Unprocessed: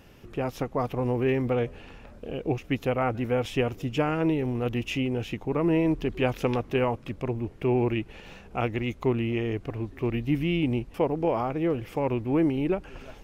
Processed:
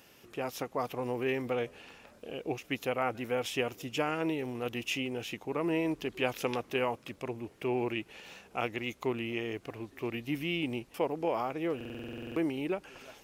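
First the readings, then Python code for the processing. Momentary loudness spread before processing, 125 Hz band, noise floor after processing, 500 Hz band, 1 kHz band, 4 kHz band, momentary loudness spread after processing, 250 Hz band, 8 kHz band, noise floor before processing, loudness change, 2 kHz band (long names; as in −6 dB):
8 LU, −13.5 dB, −60 dBFS, −6.5 dB, −4.5 dB, 0.0 dB, 9 LU, −8.5 dB, can't be measured, −49 dBFS, −6.5 dB, −1.5 dB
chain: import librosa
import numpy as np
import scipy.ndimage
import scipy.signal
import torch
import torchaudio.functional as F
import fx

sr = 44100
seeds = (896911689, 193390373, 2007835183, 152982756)

y = fx.highpass(x, sr, hz=370.0, slope=6)
y = fx.high_shelf(y, sr, hz=3700.0, db=9.5)
y = fx.buffer_glitch(y, sr, at_s=(11.76,), block=2048, repeats=12)
y = y * 10.0 ** (-4.0 / 20.0)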